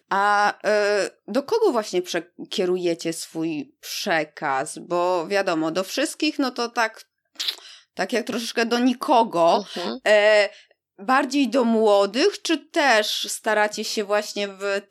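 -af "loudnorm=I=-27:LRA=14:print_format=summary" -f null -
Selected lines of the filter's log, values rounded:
Input Integrated:    -22.0 LUFS
Input True Peak:      -6.0 dBTP
Input LRA:             5.5 LU
Input Threshold:     -32.2 LUFS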